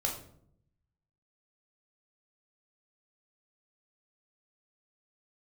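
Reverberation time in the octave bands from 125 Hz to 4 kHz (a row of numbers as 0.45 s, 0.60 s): 1.3 s, 0.95 s, 0.75 s, 0.55 s, 0.45 s, 0.40 s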